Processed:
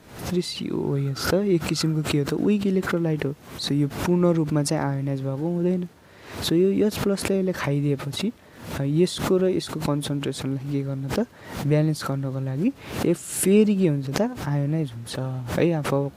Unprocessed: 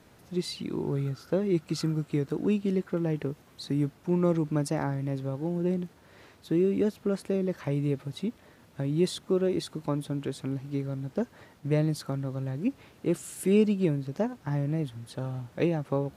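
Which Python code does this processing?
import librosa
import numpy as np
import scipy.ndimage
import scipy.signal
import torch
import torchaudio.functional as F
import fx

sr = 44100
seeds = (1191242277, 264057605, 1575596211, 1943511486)

y = fx.pre_swell(x, sr, db_per_s=90.0)
y = F.gain(torch.from_numpy(y), 5.0).numpy()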